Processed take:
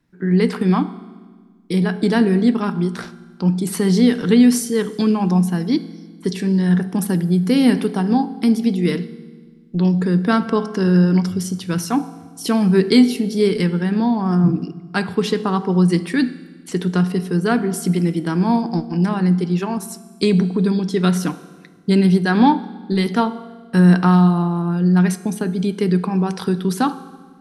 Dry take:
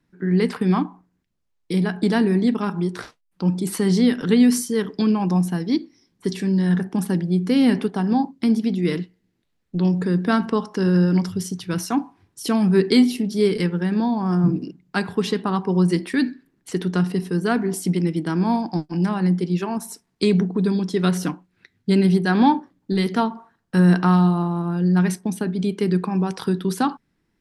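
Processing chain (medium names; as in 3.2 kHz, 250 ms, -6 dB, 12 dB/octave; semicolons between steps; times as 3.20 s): 6.92–8.92 s: treble shelf 10 kHz +10.5 dB; reverberation RT60 1.5 s, pre-delay 3 ms, DRR 13.5 dB; trim +2.5 dB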